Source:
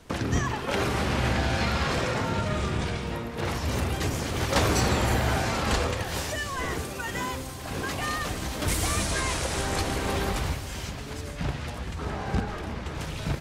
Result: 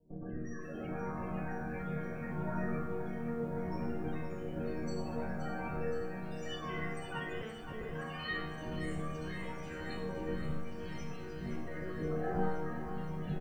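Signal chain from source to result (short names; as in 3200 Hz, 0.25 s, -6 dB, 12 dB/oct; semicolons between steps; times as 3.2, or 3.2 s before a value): 11.55–12.35 spectral gain 280–2300 Hz +8 dB; vocal rider 2 s; added harmonics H 2 -25 dB, 3 -43 dB, 6 -10 dB, 8 -21 dB, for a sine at -10.5 dBFS; rotary speaker horn 0.7 Hz; soft clip -16 dBFS, distortion -18 dB; loudest bins only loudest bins 32; resonator bank D#3 minor, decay 0.8 s; bands offset in time lows, highs 0.12 s, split 670 Hz; 7.41–7.92 monotone LPC vocoder at 8 kHz 220 Hz; lo-fi delay 0.522 s, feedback 80%, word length 13-bit, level -10 dB; gain +13 dB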